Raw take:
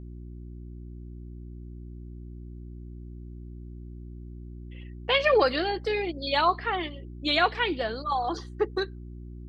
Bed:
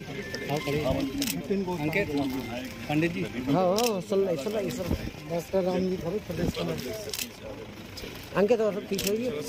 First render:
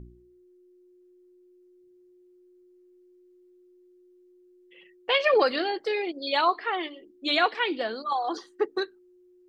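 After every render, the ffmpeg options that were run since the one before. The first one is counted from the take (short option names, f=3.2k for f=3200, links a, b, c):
-af "bandreject=f=60:t=h:w=4,bandreject=f=120:t=h:w=4,bandreject=f=180:t=h:w=4,bandreject=f=240:t=h:w=4,bandreject=f=300:t=h:w=4"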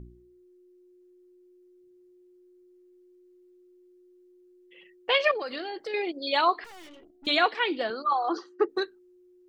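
-filter_complex "[0:a]asettb=1/sr,asplit=3[a][b][c];[a]atrim=end=5.314[d];[b]atrim=start=5.31:end=5.94,asetpts=PTS-STARTPTS,afade=t=in:d=0.004:c=qsin,afade=t=out:st=0.626:d=0.004:c=qsin,acompressor=threshold=-32dB:ratio=4:attack=3.2:release=140:knee=1:detection=peak[e];[c]atrim=start=5.936[f];[d][e]acrossfade=d=0.004:c1=hsin:c2=qsin[g];[g][f]acrossfade=d=0.004:c1=qsin:c2=hsin,asettb=1/sr,asplit=3[h][i][j];[h]atrim=end=6.644[k];[i]atrim=start=6.64:end=7.27,asetpts=PTS-STARTPTS,afade=t=in:d=0.004:c=qsin,afade=t=out:st=0.626:d=0.004:c=qsin,aeval=exprs='(tanh(224*val(0)+0.6)-tanh(0.6))/224':c=same[l];[j]atrim=start=7.266[m];[k][l]acrossfade=d=0.004:c1=hsin:c2=qsin[n];[n][m]acrossfade=d=0.004:c1=qsin:c2=hsin,asettb=1/sr,asplit=3[o][p][q];[o]atrim=end=7.904[r];[p]atrim=start=7.9:end=8.69,asetpts=PTS-STARTPTS,afade=t=in:d=0.004:c=qsin,afade=t=out:st=0.786:d=0.004:c=qsin,highpass=230,equalizer=f=350:t=q:w=4:g=5,equalizer=f=1.3k:t=q:w=4:g=9,equalizer=f=2k:t=q:w=4:g=-6,equalizer=f=3.5k:t=q:w=4:g=-9,lowpass=f=5.7k:w=0.5412,lowpass=f=5.7k:w=1.3066[s];[q]atrim=start=8.686[t];[r][s]acrossfade=d=0.004:c1=hsin:c2=qsin[u];[u][t]acrossfade=d=0.004:c1=qsin:c2=hsin"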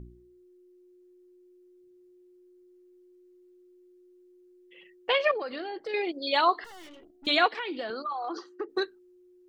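-filter_complex "[0:a]asettb=1/sr,asplit=3[a][b][c];[a]atrim=end=5.124[d];[b]atrim=start=5.12:end=5.89,asetpts=PTS-STARTPTS,afade=t=in:d=0.004:c=qsin,afade=t=out:st=0.766:d=0.004:c=qsin,highshelf=f=2.9k:g=-8.5[e];[c]atrim=start=5.886[f];[d][e]acrossfade=d=0.004:c1=hsin:c2=qsin[g];[g][f]acrossfade=d=0.004:c1=qsin:c2=hsin,asettb=1/sr,asplit=3[h][i][j];[h]atrim=end=6.404[k];[i]atrim=start=6.4:end=6.81,asetpts=PTS-STARTPTS,afade=t=in:d=0.004:c=qsin,afade=t=out:st=0.406:d=0.004:c=qsin,asuperstop=centerf=2400:order=8:qfactor=5.3[l];[j]atrim=start=6.806[m];[k][l]acrossfade=d=0.004:c1=hsin:c2=qsin[n];[n][m]acrossfade=d=0.004:c1=qsin:c2=hsin,asplit=3[o][p][q];[o]afade=t=out:st=7.47:d=0.02[r];[p]acompressor=threshold=-30dB:ratio=6:attack=3.2:release=140:knee=1:detection=peak,afade=t=in:st=7.47:d=0.02,afade=t=out:st=8.71:d=0.02[s];[q]afade=t=in:st=8.71:d=0.02[t];[r][s][t]amix=inputs=3:normalize=0"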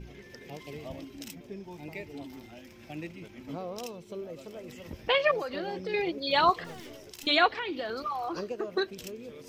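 -filter_complex "[1:a]volume=-14dB[a];[0:a][a]amix=inputs=2:normalize=0"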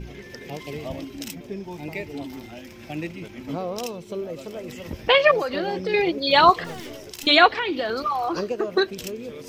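-af "volume=8.5dB"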